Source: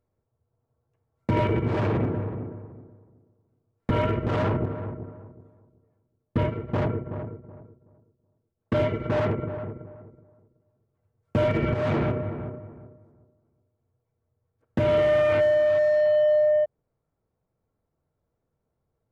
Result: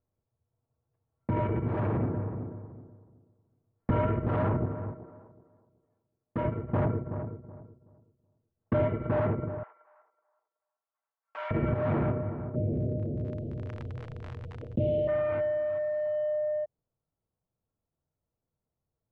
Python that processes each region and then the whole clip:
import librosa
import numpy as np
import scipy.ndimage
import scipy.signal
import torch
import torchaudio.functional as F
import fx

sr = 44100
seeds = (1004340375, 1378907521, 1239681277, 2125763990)

y = fx.chain(x, sr, fx.low_shelf(hz=190.0, db=-10.5),
    fx.hum_notches(base_hz=50, count=9), at=(4.92, 6.45))
y = fx.chain(y, sr, fx.highpass(hz=890.0, slope=24),
    fx.high_shelf(hz=3800.0, db=10.5), at=(9.63, 11.51))
y = fx.cheby1_bandstop(y, sr, low_hz=570.0, high_hz=2900.0, order=3, at=(12.54, 15.07), fade=0.02)
y = fx.dmg_crackle(y, sr, seeds[0], per_s=44.0, level_db=-57.0, at=(12.54, 15.07), fade=0.02)
y = fx.env_flatten(y, sr, amount_pct=70, at=(12.54, 15.07), fade=0.02)
y = scipy.signal.sosfilt(scipy.signal.butter(2, 1500.0, 'lowpass', fs=sr, output='sos'), y)
y = fx.rider(y, sr, range_db=4, speed_s=2.0)
y = fx.peak_eq(y, sr, hz=430.0, db=-3.5, octaves=0.72)
y = y * librosa.db_to_amplitude(-4.5)